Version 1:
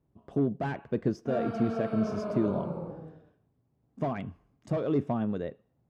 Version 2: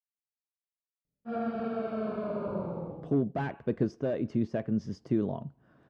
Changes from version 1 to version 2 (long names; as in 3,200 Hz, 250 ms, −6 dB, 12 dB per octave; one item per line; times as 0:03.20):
speech: entry +2.75 s
master: add high-frequency loss of the air 62 metres